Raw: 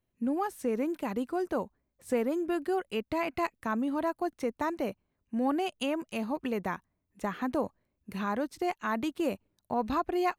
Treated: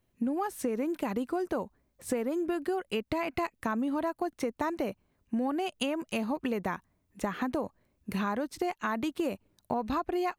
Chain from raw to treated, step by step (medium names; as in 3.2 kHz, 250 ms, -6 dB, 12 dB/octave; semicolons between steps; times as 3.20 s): compression, threshold -35 dBFS, peak gain reduction 11 dB; trim +7 dB